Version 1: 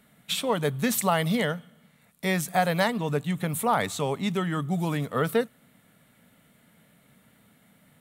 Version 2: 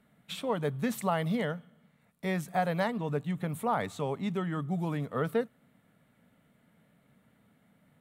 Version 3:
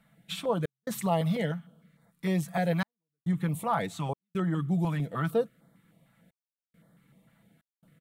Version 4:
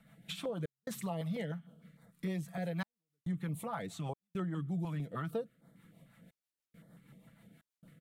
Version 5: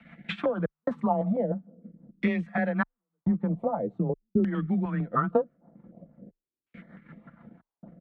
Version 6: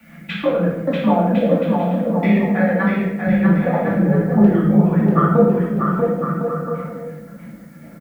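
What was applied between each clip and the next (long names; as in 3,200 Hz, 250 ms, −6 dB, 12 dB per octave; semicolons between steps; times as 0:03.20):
high-shelf EQ 2,700 Hz −11 dB; level −4.5 dB
comb filter 6 ms, depth 51%; gate pattern "xxx.xxxxxxxxx..x" 69 BPM −60 dB; notch on a step sequencer 6.6 Hz 370–2,600 Hz; level +2 dB
downward compressor 2 to 1, threshold −46 dBFS, peak gain reduction 13.5 dB; rotating-speaker cabinet horn 6.3 Hz; level +4 dB
transient designer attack +5 dB, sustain −5 dB; auto-filter low-pass saw down 0.45 Hz 290–2,500 Hz; frequency shifter +20 Hz; level +8 dB
background noise blue −67 dBFS; bouncing-ball delay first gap 640 ms, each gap 0.65×, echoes 5; convolution reverb RT60 0.90 s, pre-delay 3 ms, DRR −6 dB; level +1.5 dB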